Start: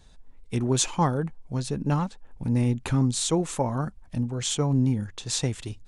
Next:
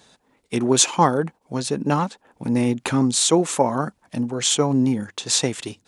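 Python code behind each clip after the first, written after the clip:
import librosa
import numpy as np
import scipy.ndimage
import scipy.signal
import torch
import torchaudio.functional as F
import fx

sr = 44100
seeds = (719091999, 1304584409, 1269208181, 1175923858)

y = scipy.signal.sosfilt(scipy.signal.butter(2, 240.0, 'highpass', fs=sr, output='sos'), x)
y = F.gain(torch.from_numpy(y), 8.5).numpy()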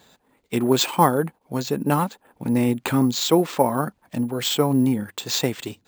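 y = np.repeat(scipy.signal.resample_poly(x, 1, 4), 4)[:len(x)]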